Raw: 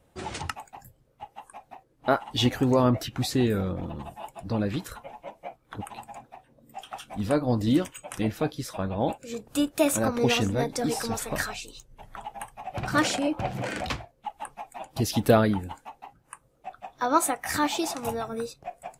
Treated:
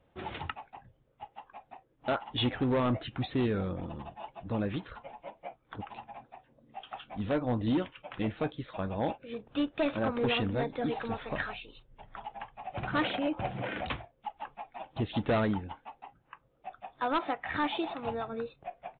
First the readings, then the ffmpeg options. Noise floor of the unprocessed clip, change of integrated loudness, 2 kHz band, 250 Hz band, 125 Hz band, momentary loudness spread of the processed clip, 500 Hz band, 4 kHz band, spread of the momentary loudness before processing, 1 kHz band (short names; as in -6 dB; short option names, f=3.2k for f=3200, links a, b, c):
-65 dBFS, -6.5 dB, -4.5 dB, -6.0 dB, -6.0 dB, 19 LU, -6.0 dB, -6.0 dB, 20 LU, -5.5 dB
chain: -af "lowshelf=f=320:g=-2,aresample=8000,asoftclip=type=hard:threshold=-20dB,aresample=44100,volume=-3.5dB"